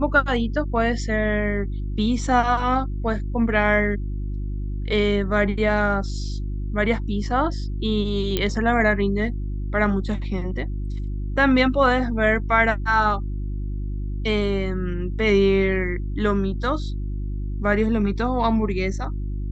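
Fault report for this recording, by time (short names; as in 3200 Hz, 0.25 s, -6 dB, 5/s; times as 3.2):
hum 50 Hz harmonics 7 -27 dBFS
8.37 pop -8 dBFS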